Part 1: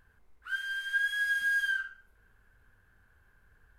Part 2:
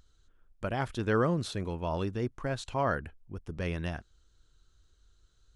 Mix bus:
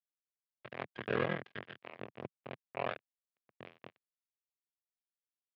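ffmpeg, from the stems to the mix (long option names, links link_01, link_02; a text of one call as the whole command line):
ffmpeg -i stem1.wav -i stem2.wav -filter_complex "[0:a]volume=-5.5dB[link_01];[1:a]aeval=exprs='val(0)*sin(2*PI*21*n/s)':channel_layout=same,volume=1.5dB[link_02];[link_01][link_02]amix=inputs=2:normalize=0,asoftclip=type=tanh:threshold=-20dB,acrusher=bits=3:mix=0:aa=0.5,highpass=frequency=120:width=0.5412,highpass=frequency=120:width=1.3066,equalizer=frequency=170:width_type=q:width=4:gain=-5,equalizer=frequency=290:width_type=q:width=4:gain=-7,equalizer=frequency=890:width_type=q:width=4:gain=-7,equalizer=frequency=1400:width_type=q:width=4:gain=-6,lowpass=frequency=2900:width=0.5412,lowpass=frequency=2900:width=1.3066" out.wav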